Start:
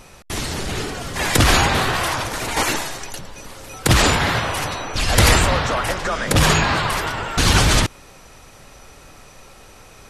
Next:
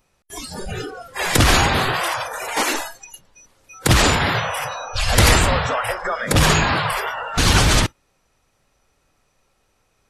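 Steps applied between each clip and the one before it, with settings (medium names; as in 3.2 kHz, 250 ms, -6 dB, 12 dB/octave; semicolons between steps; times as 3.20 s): spectral noise reduction 21 dB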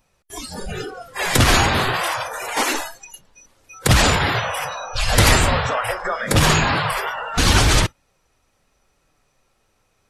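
flange 0.25 Hz, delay 1.1 ms, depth 9.6 ms, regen -58%; trim +4 dB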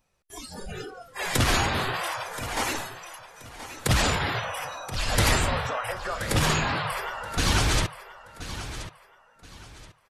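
feedback delay 1027 ms, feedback 29%, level -13 dB; trim -8 dB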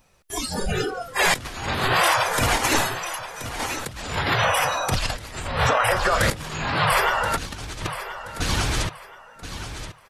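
compressor with a negative ratio -30 dBFS, ratio -0.5; trim +8 dB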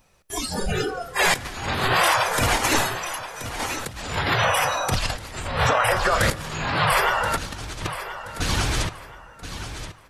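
plate-style reverb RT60 2.2 s, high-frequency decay 0.5×, DRR 18 dB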